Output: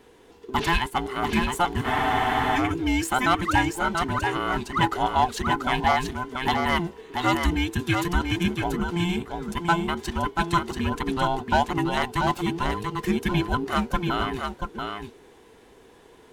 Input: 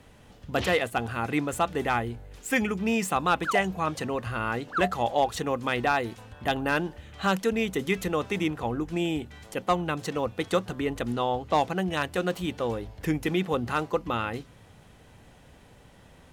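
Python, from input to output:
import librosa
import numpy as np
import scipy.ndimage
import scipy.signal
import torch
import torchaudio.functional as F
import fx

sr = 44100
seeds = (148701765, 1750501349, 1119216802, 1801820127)

p1 = fx.band_invert(x, sr, width_hz=500)
p2 = np.sign(p1) * np.maximum(np.abs(p1) - 10.0 ** (-38.0 / 20.0), 0.0)
p3 = p1 + F.gain(torch.from_numpy(p2), -9.0).numpy()
p4 = p3 + 10.0 ** (-5.0 / 20.0) * np.pad(p3, (int(685 * sr / 1000.0), 0))[:len(p3)]
y = fx.spec_freeze(p4, sr, seeds[0], at_s=1.89, hold_s=0.68)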